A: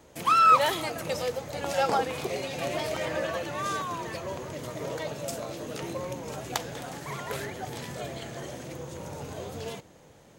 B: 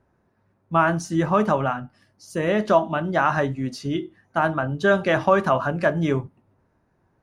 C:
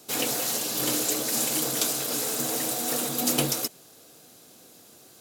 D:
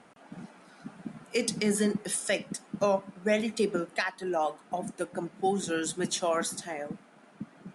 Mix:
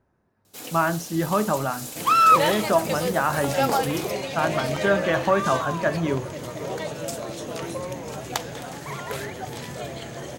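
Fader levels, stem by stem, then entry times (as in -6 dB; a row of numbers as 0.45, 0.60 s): +3.0, -3.0, -10.5, -11.0 dB; 1.80, 0.00, 0.45, 1.25 s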